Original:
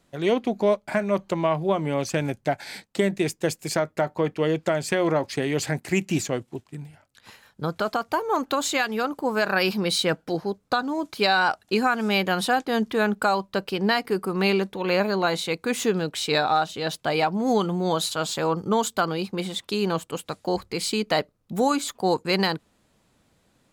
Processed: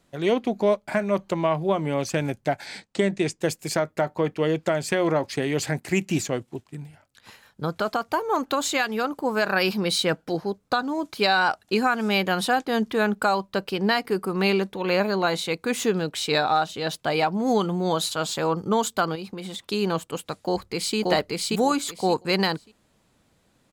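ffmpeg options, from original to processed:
-filter_complex "[0:a]asettb=1/sr,asplit=3[a][b][c];[a]atrim=end=2.664[d];[b]atrim=start=2.66:end=3.4,asetpts=PTS-STARTPTS,afade=t=in:d=0.004:c=qsin,afade=t=out:st=0.736:d=0.004:c=qsin,lowpass=f=8.8k:w=0.5412,lowpass=f=8.8k:w=1.3066[e];[c]atrim=start=3.396[f];[d][e]acrossfade=d=0.004:c1=hsin:c2=qsin[g];[g][f]acrossfade=d=0.004:c1=qsin:c2=hsin,asettb=1/sr,asplit=3[h][i][j];[h]atrim=end=19.154[k];[i]atrim=start=19.15:end=19.65,asetpts=PTS-STARTPTS,afade=t=in:d=0.004:c=qsin,afade=t=out:st=0.496:d=0.004:c=qsin,acompressor=threshold=-30dB:ratio=10:attack=3.2:release=140:knee=1:detection=peak[l];[j]atrim=start=19.646[m];[k][l]acrossfade=d=0.004:c1=hsin:c2=qsin[n];[n][m]acrossfade=d=0.004:c1=qsin:c2=hsin,asplit=2[o][p];[p]afade=t=in:st=20.35:d=0.01,afade=t=out:st=20.97:d=0.01,aecho=0:1:580|1160|1740:0.944061|0.188812|0.0377624[q];[o][q]amix=inputs=2:normalize=0"

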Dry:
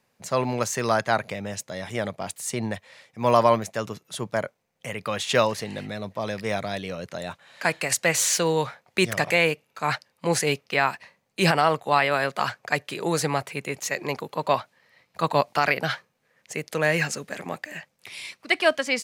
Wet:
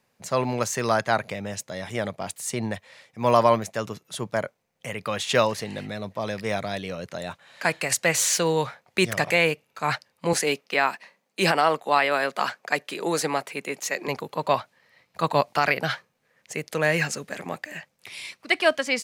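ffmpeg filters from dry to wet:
-filter_complex "[0:a]asettb=1/sr,asplit=3[a][b][c];[a]atrim=end=10.334[d];[b]atrim=start=10.33:end=14.08,asetpts=PTS-STARTPTS,afade=t=in:d=0.004:c=qsin,afade=t=out:st=3.746:d=0.004:c=qsin,highpass=f=190:w=0.5412,highpass=f=190:w=1.3066[e];[c]atrim=start=14.076[f];[d][e]acrossfade=d=0.004:c1=hsin:c2=qsin[g];[g][f]acrossfade=d=0.004:c1=qsin:c2=hsin"

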